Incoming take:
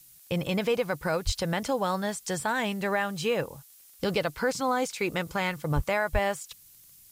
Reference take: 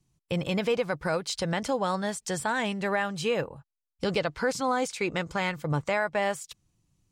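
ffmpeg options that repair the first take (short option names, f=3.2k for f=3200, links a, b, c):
-filter_complex "[0:a]adeclick=t=4,asplit=3[a][b][c];[a]afade=t=out:st=1.25:d=0.02[d];[b]highpass=f=140:w=0.5412,highpass=f=140:w=1.3066,afade=t=in:st=1.25:d=0.02,afade=t=out:st=1.37:d=0.02[e];[c]afade=t=in:st=1.37:d=0.02[f];[d][e][f]amix=inputs=3:normalize=0,asplit=3[g][h][i];[g]afade=t=out:st=5.75:d=0.02[j];[h]highpass=f=140:w=0.5412,highpass=f=140:w=1.3066,afade=t=in:st=5.75:d=0.02,afade=t=out:st=5.87:d=0.02[k];[i]afade=t=in:st=5.87:d=0.02[l];[j][k][l]amix=inputs=3:normalize=0,asplit=3[m][n][o];[m]afade=t=out:st=6.12:d=0.02[p];[n]highpass=f=140:w=0.5412,highpass=f=140:w=1.3066,afade=t=in:st=6.12:d=0.02,afade=t=out:st=6.24:d=0.02[q];[o]afade=t=in:st=6.24:d=0.02[r];[p][q][r]amix=inputs=3:normalize=0,afftdn=nr=18:nf=-54"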